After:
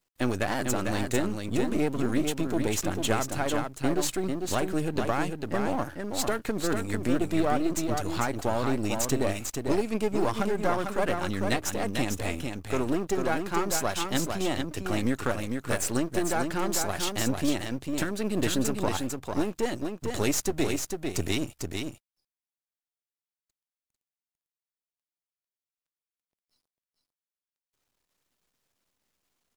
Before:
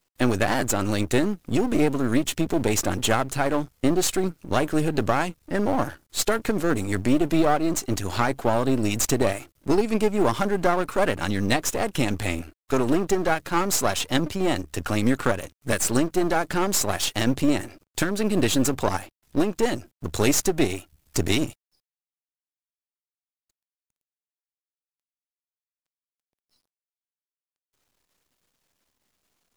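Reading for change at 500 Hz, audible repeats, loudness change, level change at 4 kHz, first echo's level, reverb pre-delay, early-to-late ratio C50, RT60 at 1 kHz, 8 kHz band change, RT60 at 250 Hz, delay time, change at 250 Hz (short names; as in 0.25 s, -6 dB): -5.0 dB, 1, -5.0 dB, -5.0 dB, -5.0 dB, none, none, none, -5.0 dB, none, 0.448 s, -5.0 dB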